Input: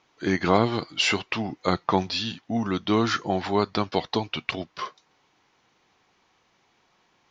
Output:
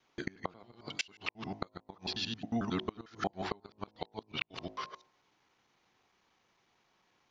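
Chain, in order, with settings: time reversed locally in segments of 90 ms; de-hum 53.02 Hz, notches 20; inverted gate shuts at -12 dBFS, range -28 dB; trim -7 dB

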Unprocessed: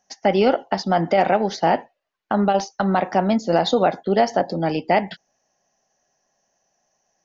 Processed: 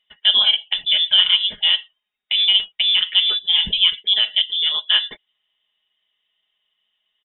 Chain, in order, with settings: treble shelf 2.4 kHz -5 dB; frequency inversion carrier 3.7 kHz; comb 4.8 ms, depth 62%

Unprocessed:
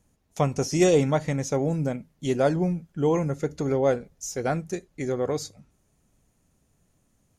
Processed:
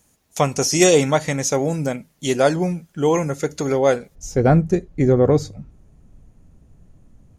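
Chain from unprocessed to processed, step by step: tilt EQ +2 dB/octave, from 4.14 s -3 dB/octave; trim +7.5 dB

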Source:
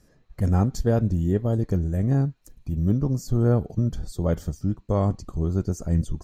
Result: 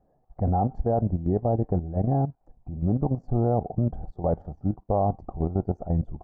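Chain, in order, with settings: resonant low-pass 760 Hz, resonance Q 7.5; level held to a coarse grid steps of 11 dB

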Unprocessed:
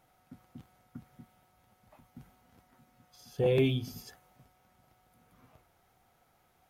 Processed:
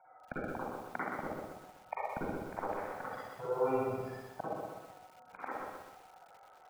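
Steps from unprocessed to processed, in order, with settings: waveshaping leveller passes 5; inverted gate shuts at -34 dBFS, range -31 dB; Chebyshev low-pass 9 kHz, order 8; three-band isolator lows -17 dB, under 400 Hz, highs -22 dB, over 2.3 kHz; on a send: feedback echo behind a high-pass 71 ms, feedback 81%, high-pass 3.5 kHz, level -14 dB; on the sum: spectral gate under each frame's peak -15 dB strong; reverberation RT60 0.65 s, pre-delay 42 ms, DRR -6.5 dB; bit-crushed delay 125 ms, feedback 55%, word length 12-bit, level -3.5 dB; trim +14 dB

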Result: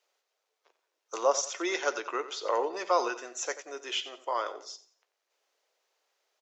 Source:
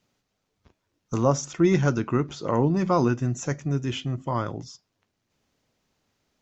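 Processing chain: on a send: feedback delay 89 ms, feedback 34%, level -14 dB; on the sum: dynamic bell 4 kHz, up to +6 dB, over -48 dBFS, Q 0.85; steep high-pass 430 Hz 36 dB/octave; trim -2 dB

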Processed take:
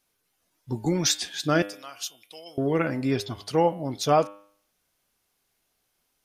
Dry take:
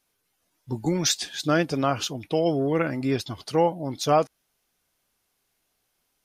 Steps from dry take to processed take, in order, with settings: 1.62–2.58 s: differentiator; de-hum 100.9 Hz, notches 36

